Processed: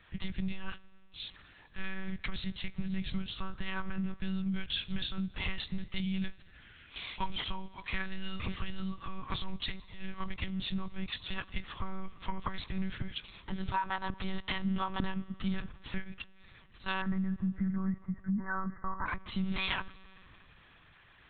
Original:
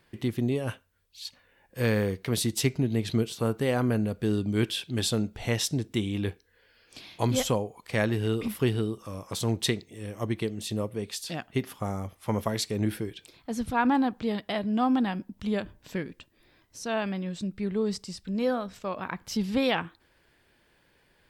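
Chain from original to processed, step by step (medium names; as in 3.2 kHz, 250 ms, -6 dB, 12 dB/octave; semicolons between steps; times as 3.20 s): elliptic band-stop 200–920 Hz, stop band 40 dB; bass shelf 88 Hz -2.5 dB; compression 12:1, threshold -36 dBFS, peak gain reduction 14.5 dB; 17.01–19.07 s: brick-wall FIR low-pass 2.1 kHz; reverberation RT60 4.0 s, pre-delay 3 ms, DRR 18 dB; monotone LPC vocoder at 8 kHz 190 Hz; trim +7 dB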